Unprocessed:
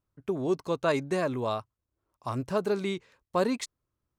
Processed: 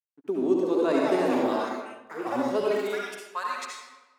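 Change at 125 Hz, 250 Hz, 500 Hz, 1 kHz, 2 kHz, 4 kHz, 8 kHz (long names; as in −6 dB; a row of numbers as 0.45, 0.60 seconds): −9.5, +5.0, +3.5, +4.0, +3.0, +1.0, 0.0 decibels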